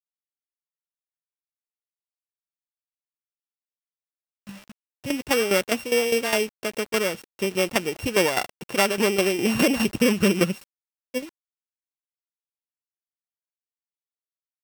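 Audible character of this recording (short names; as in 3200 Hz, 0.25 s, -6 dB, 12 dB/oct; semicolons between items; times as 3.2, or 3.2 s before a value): a buzz of ramps at a fixed pitch in blocks of 16 samples; tremolo saw down 4.9 Hz, depth 70%; a quantiser's noise floor 8-bit, dither none; Vorbis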